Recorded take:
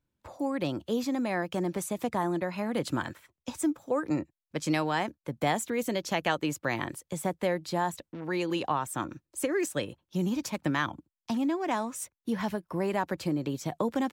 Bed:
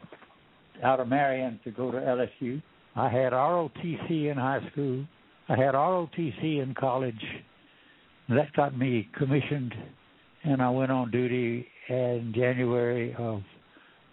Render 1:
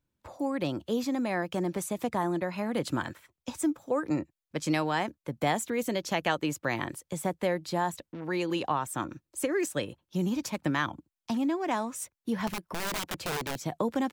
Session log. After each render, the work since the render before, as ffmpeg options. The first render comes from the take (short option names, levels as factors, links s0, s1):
-filter_complex "[0:a]asettb=1/sr,asplit=3[s0][s1][s2];[s0]atrim=end=12.474[s3];[s1]atrim=start=12.47:end=13.56,asetpts=PTS-STARTPTS,afade=t=in:d=0.004:c=qsin,afade=t=out:st=1.086:d=0.004:c=qsin,aeval=exprs='(mod(22.4*val(0)+1,2)-1)/22.4':c=same[s4];[s2]atrim=start=13.556[s5];[s3][s4]acrossfade=d=0.004:c1=hsin:c2=qsin[s6];[s6][s5]acrossfade=d=0.004:c1=qsin:c2=hsin"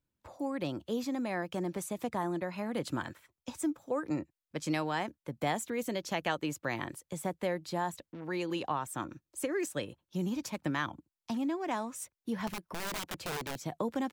-af "volume=0.596"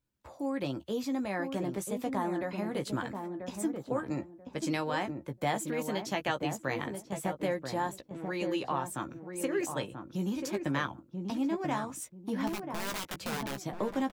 -filter_complex "[0:a]asplit=2[s0][s1];[s1]adelay=15,volume=0.422[s2];[s0][s2]amix=inputs=2:normalize=0,asplit=2[s3][s4];[s4]adelay=986,lowpass=f=800:p=1,volume=0.596,asplit=2[s5][s6];[s6]adelay=986,lowpass=f=800:p=1,volume=0.26,asplit=2[s7][s8];[s8]adelay=986,lowpass=f=800:p=1,volume=0.26,asplit=2[s9][s10];[s10]adelay=986,lowpass=f=800:p=1,volume=0.26[s11];[s5][s7][s9][s11]amix=inputs=4:normalize=0[s12];[s3][s12]amix=inputs=2:normalize=0"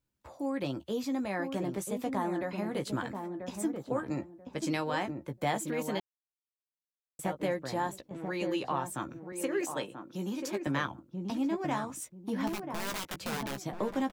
-filter_complex "[0:a]asettb=1/sr,asplit=3[s0][s1][s2];[s0]atrim=end=9.324[s3];[s1]atrim=start=9.32:end=10.67,asetpts=PTS-STARTPTS,afade=t=in:d=0.004:c=qsin,afade=t=out:st=1.346:d=0.004:c=qsin,highpass=210[s4];[s2]atrim=start=10.666[s5];[s3][s4]acrossfade=d=0.004:c1=hsin:c2=qsin[s6];[s6][s5]acrossfade=d=0.004:c1=qsin:c2=hsin,asplit=3[s7][s8][s9];[s7]atrim=end=6,asetpts=PTS-STARTPTS,afade=t=out:st=5.996:d=0.004:c=hsin[s10];[s8]atrim=start=6:end=7.19,asetpts=PTS-STARTPTS,volume=0[s11];[s9]atrim=start=7.19,asetpts=PTS-STARTPTS,afade=t=in:d=0.004:c=hsin[s12];[s10][s11][s12]concat=n=3:v=0:a=1"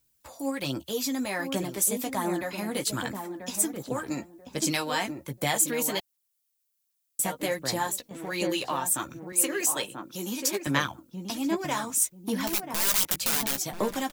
-af "aphaser=in_gain=1:out_gain=1:delay=4.4:decay=0.41:speed=1.3:type=sinusoidal,crystalizer=i=5.5:c=0"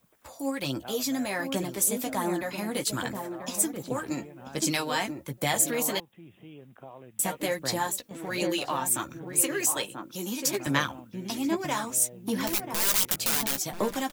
-filter_complex "[1:a]volume=0.112[s0];[0:a][s0]amix=inputs=2:normalize=0"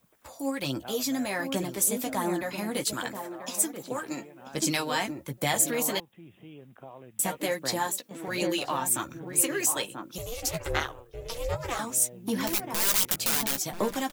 -filter_complex "[0:a]asettb=1/sr,asplit=3[s0][s1][s2];[s0]atrim=end=2.934[s3];[s1]atrim=start=2.93:end=4.54,asetpts=PTS-STARTPTS,afade=t=in:d=0.004:c=qsin,afade=t=out:st=1.606:d=0.004:c=qsin,highpass=f=330:p=1[s4];[s2]atrim=start=4.536[s5];[s3][s4]acrossfade=d=0.004:c1=hsin:c2=qsin[s6];[s6][s5]acrossfade=d=0.004:c1=qsin:c2=hsin,asettb=1/sr,asplit=3[s7][s8][s9];[s7]atrim=end=7.394[s10];[s8]atrim=start=7.39:end=8.28,asetpts=PTS-STARTPTS,afade=t=in:d=0.004:c=qsin,afade=t=out:st=0.886:d=0.004:c=qsin,highpass=150[s11];[s9]atrim=start=8.276[s12];[s10][s11]acrossfade=d=0.004:c1=hsin:c2=qsin[s13];[s13][s12]acrossfade=d=0.004:c1=qsin:c2=hsin,asettb=1/sr,asplit=3[s14][s15][s16];[s14]atrim=end=10.184[s17];[s15]atrim=start=10.18:end=11.79,asetpts=PTS-STARTPTS,afade=t=in:d=0.004:c=qsin,afade=t=out:st=1.606:d=0.004:c=qsin,aeval=exprs='val(0)*sin(2*PI*240*n/s)':c=same[s18];[s16]atrim=start=11.786[s19];[s17][s18]acrossfade=d=0.004:c1=hsin:c2=qsin[s20];[s20][s19]acrossfade=d=0.004:c1=qsin:c2=hsin"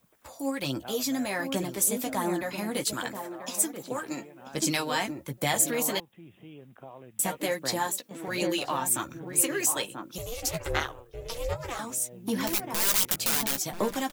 -filter_complex "[0:a]asettb=1/sr,asplit=3[s0][s1][s2];[s0]atrim=end=11.534[s3];[s1]atrim=start=11.53:end=12.13,asetpts=PTS-STARTPTS,afade=t=in:d=0.004:c=qsin,afade=t=out:st=0.596:d=0.004:c=qsin,acompressor=threshold=0.0178:ratio=1.5:attack=3.2:release=140:knee=1:detection=peak[s4];[s2]atrim=start=12.126[s5];[s3][s4]acrossfade=d=0.004:c1=hsin:c2=qsin[s6];[s6][s5]acrossfade=d=0.004:c1=qsin:c2=hsin"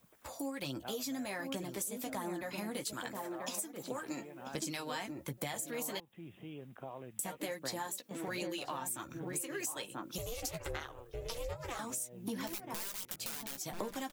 -af "alimiter=limit=0.211:level=0:latency=1:release=180,acompressor=threshold=0.0141:ratio=6"